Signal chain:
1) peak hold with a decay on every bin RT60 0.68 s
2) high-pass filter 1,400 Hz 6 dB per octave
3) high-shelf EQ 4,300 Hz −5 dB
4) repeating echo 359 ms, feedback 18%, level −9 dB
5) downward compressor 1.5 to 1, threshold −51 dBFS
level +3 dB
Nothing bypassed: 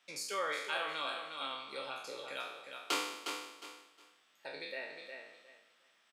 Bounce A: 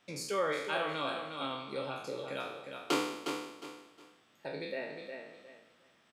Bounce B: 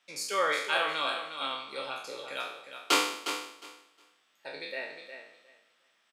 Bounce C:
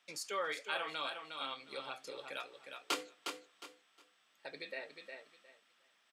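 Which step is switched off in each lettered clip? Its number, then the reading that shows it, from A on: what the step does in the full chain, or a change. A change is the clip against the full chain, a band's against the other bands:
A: 2, 125 Hz band +16.0 dB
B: 5, average gain reduction 4.5 dB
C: 1, 125 Hz band +2.0 dB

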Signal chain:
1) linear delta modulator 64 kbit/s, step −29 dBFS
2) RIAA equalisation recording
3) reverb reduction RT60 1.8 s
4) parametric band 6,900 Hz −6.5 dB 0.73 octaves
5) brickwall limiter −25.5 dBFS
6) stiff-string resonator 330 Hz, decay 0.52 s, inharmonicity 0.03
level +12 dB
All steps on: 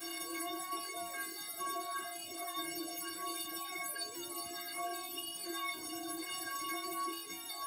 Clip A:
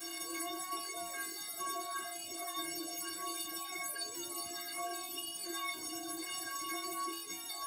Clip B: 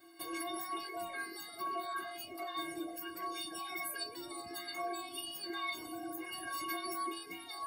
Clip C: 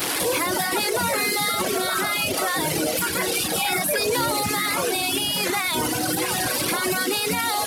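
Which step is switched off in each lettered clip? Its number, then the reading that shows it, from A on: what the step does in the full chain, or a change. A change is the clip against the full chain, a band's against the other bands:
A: 4, 8 kHz band +3.5 dB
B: 1, 8 kHz band −7.0 dB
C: 6, 125 Hz band +15.5 dB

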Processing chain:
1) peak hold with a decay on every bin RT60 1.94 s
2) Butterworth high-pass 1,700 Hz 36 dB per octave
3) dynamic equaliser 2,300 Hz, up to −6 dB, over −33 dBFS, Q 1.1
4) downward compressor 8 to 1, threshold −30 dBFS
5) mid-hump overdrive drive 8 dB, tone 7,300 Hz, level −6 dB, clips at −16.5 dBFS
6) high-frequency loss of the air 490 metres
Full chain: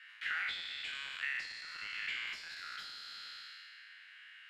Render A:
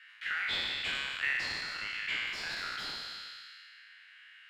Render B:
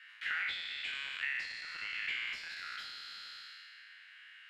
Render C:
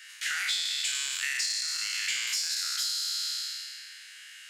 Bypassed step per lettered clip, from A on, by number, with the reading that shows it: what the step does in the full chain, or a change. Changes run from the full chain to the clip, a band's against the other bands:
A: 4, average gain reduction 5.5 dB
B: 3, 8 kHz band −2.0 dB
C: 6, 8 kHz band +24.5 dB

